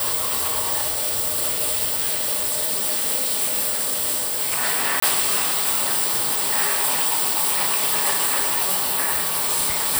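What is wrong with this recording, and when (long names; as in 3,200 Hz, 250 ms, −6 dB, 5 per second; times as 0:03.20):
0:05.00–0:05.02: drop-out 24 ms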